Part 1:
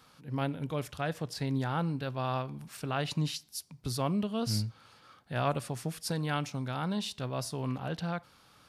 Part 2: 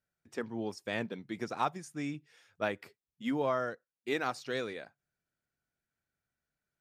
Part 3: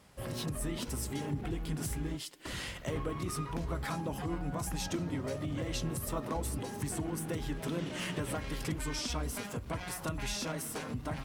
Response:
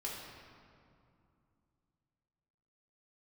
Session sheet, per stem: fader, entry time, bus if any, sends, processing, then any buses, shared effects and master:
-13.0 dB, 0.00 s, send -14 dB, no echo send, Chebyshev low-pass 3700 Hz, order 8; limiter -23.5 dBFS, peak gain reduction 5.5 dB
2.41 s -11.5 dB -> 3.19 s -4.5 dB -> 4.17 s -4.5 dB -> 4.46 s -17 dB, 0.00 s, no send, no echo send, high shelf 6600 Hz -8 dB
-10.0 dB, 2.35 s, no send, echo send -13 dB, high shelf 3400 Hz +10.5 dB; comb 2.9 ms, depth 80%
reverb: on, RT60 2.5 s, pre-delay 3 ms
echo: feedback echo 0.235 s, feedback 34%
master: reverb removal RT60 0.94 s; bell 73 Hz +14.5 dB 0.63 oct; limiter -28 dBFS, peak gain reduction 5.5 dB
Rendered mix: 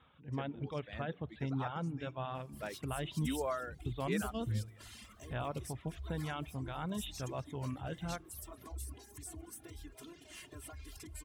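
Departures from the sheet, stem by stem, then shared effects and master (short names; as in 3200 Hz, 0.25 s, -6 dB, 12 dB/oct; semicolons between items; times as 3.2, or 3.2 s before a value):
stem 1 -13.0 dB -> -5.5 dB; stem 3 -10.0 dB -> -18.0 dB; master: missing limiter -28 dBFS, peak gain reduction 5.5 dB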